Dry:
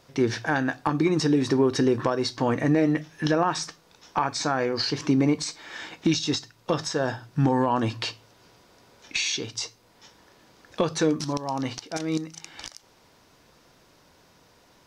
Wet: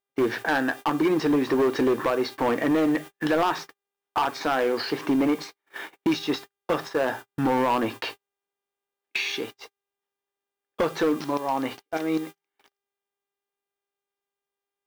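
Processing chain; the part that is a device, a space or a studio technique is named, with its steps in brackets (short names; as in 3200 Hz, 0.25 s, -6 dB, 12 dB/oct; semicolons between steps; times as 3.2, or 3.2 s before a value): aircraft radio (BPF 300–2500 Hz; hard clip -22 dBFS, distortion -11 dB; buzz 400 Hz, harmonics 9, -52 dBFS -4 dB/oct; white noise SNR 24 dB; gate -39 dBFS, range -44 dB); gain +4.5 dB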